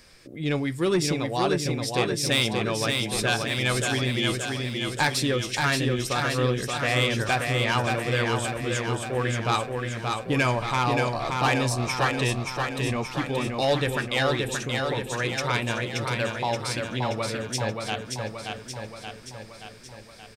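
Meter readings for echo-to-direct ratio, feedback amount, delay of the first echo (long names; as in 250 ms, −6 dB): −2.0 dB, 60%, 577 ms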